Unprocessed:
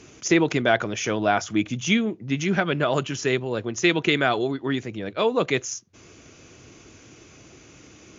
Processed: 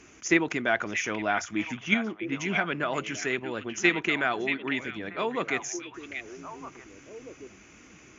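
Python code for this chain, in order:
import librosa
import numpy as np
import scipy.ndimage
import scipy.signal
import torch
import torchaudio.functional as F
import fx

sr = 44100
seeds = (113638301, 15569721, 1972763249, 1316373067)

p1 = fx.graphic_eq_10(x, sr, hz=(125, 500, 2000, 4000), db=(-11, -6, 4, -8))
p2 = fx.env_lowpass(p1, sr, base_hz=1500.0, full_db=-18.5, at=(1.77, 2.31), fade=0.02)
p3 = fx.level_steps(p2, sr, step_db=19)
p4 = p2 + (p3 * librosa.db_to_amplitude(-2.0))
p5 = fx.echo_stepped(p4, sr, ms=632, hz=2600.0, octaves=-1.4, feedback_pct=70, wet_db=-5)
y = p5 * librosa.db_to_amplitude(-5.0)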